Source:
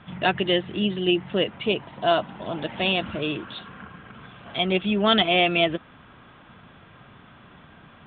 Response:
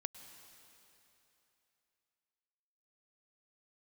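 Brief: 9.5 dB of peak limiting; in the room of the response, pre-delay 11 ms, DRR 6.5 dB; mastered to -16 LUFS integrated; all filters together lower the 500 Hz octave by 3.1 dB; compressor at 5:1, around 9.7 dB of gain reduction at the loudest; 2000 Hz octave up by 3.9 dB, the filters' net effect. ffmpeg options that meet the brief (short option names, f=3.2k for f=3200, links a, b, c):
-filter_complex "[0:a]equalizer=f=500:t=o:g=-5,equalizer=f=2k:t=o:g=5.5,acompressor=threshold=-25dB:ratio=5,alimiter=limit=-22dB:level=0:latency=1,asplit=2[a][b];[1:a]atrim=start_sample=2205,adelay=11[c];[b][c]afir=irnorm=-1:irlink=0,volume=-4dB[d];[a][d]amix=inputs=2:normalize=0,volume=16dB"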